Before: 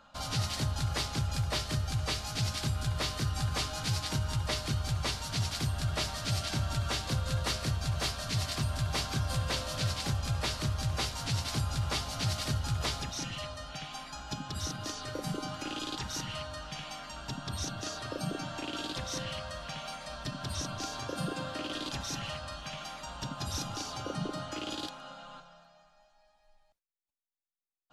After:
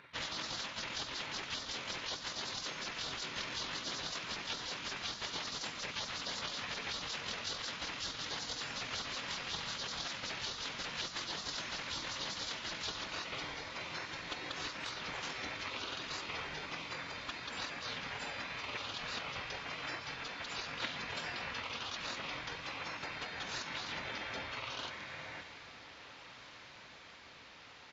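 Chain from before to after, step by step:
meter weighting curve A
gate on every frequency bin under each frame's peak −15 dB weak
low-shelf EQ 180 Hz −2.5 dB
downward compressor 3 to 1, threshold −49 dBFS, peak gain reduction 7 dB
pitch shifter −10 semitones
on a send: feedback delay with all-pass diffusion 1,696 ms, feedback 78%, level −15 dB
on the sum: level +11.5 dB

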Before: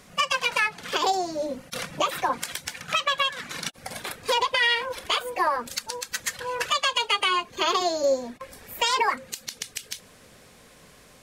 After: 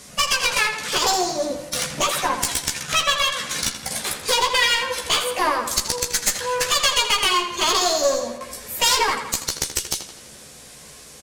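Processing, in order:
low-pass filter 11,000 Hz 12 dB per octave
bass and treble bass +1 dB, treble +12 dB
asymmetric clip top −25.5 dBFS
double-tracking delay 14 ms −3.5 dB
tape delay 82 ms, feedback 60%, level −8 dB, low-pass 5,200 Hz
level +2.5 dB

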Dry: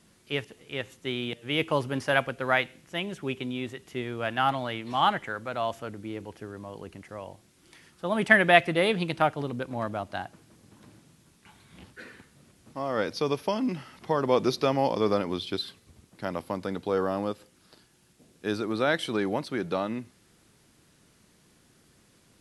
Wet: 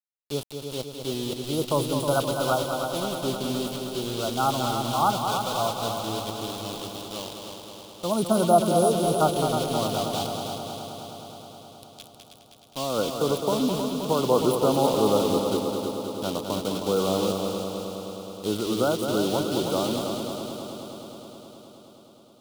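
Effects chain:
brick-wall band-stop 1,500–8,300 Hz
centre clipping without the shift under −39.5 dBFS
high shelf with overshoot 2,500 Hz +10.5 dB, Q 3
on a send: echo machine with several playback heads 105 ms, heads second and third, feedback 71%, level −7 dB
on the sum: level +2.5 dB

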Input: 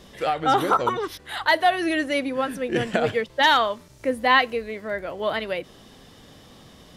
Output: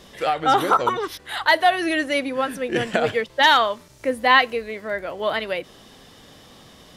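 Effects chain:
low-shelf EQ 360 Hz −5 dB
level +3 dB

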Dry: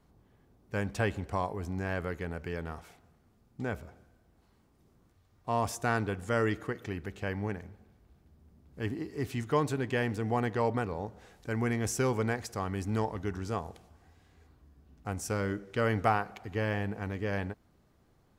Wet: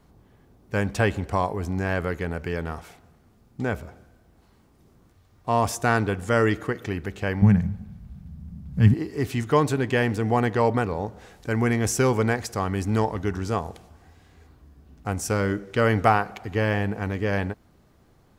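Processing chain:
0:07.42–0:08.94: low shelf with overshoot 250 Hz +10.5 dB, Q 3
level +8 dB

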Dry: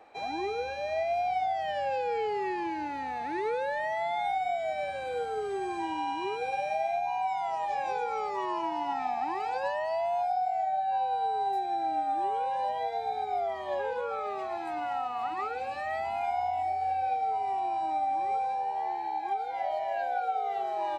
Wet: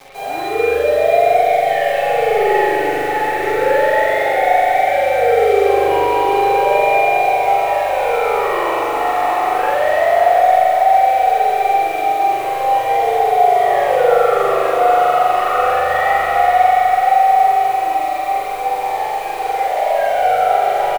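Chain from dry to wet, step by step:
low-pass filter 2,400 Hz 12 dB per octave
low-shelf EQ 430 Hz −10.5 dB
leveller curve on the samples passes 1
in parallel at +1.5 dB: brickwall limiter −34.5 dBFS, peak gain reduction 10.5 dB
on the sum: bit reduction 7 bits
multi-voice chorus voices 6, 0.15 Hz, delay 11 ms, depth 4.3 ms
double-tracking delay 42 ms −3 dB
feedback delay with all-pass diffusion 680 ms, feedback 48%, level −7 dB
spring reverb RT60 3.2 s, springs 40 ms, chirp 30 ms, DRR −9 dB
level +6 dB

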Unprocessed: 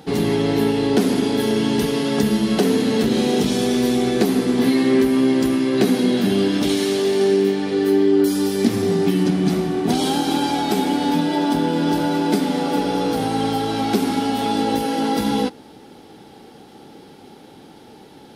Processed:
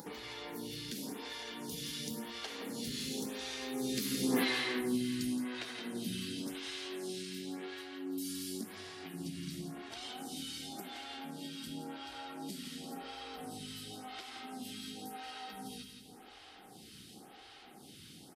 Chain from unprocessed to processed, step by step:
source passing by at 0:04.42, 19 m/s, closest 1.8 metres
guitar amp tone stack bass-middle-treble 5-5-5
upward compression, threshold −44 dBFS
repeating echo 169 ms, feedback 45%, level −7.5 dB
downward compressor 1.5 to 1, threshold −56 dBFS, peak gain reduction 9 dB
phaser with staggered stages 0.93 Hz
level +17.5 dB

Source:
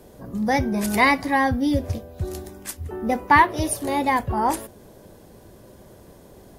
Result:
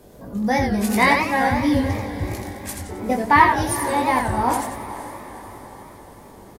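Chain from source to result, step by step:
double-tracking delay 20 ms −4.5 dB
feedback delay with all-pass diffusion 475 ms, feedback 53%, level −13 dB
feedback echo with a swinging delay time 88 ms, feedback 38%, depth 202 cents, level −5 dB
level −1 dB

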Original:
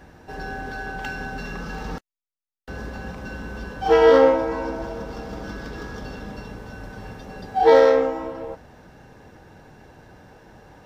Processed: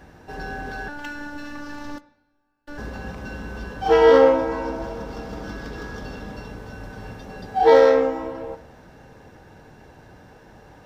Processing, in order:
0:00.88–0:02.78: phases set to zero 292 Hz
on a send: convolution reverb, pre-delay 3 ms, DRR 14.5 dB

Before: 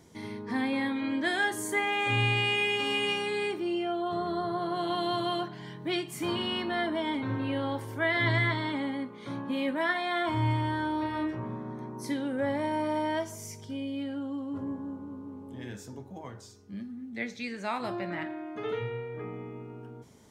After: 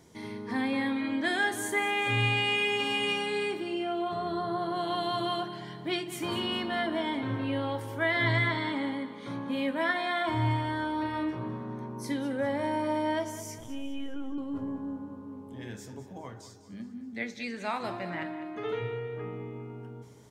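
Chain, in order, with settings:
0:13.58–0:14.38: linear-prediction vocoder at 8 kHz pitch kept
mains-hum notches 50/100/150/200/250/300/350 Hz
repeating echo 202 ms, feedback 46%, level −13.5 dB

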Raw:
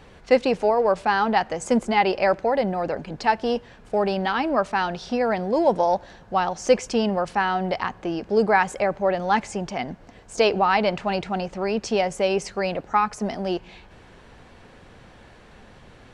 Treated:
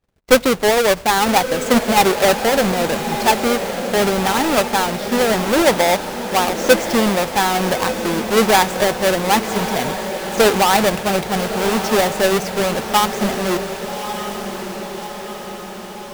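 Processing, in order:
each half-wave held at its own peak
noise gate −39 dBFS, range −37 dB
feedback delay with all-pass diffusion 1,193 ms, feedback 59%, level −8.5 dB
level +1.5 dB

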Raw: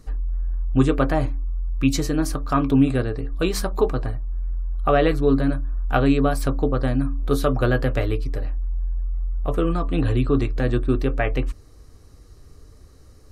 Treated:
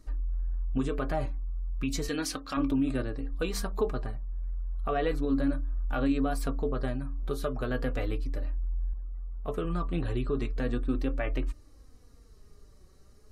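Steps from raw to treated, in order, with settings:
0:02.08–0:02.57: meter weighting curve D
0:06.89–0:07.71: downward compressor, threshold −19 dBFS, peak gain reduction 5.5 dB
0:08.93–0:09.65: high-pass filter 70 Hz 6 dB per octave
brickwall limiter −12.5 dBFS, peak gain reduction 6.5 dB
flanger 0.35 Hz, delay 3.1 ms, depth 2.3 ms, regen +29%
level −4 dB

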